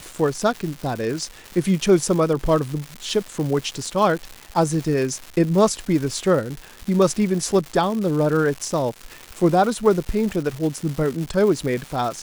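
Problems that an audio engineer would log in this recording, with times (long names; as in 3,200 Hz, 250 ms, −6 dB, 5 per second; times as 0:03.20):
surface crackle 350 per second −27 dBFS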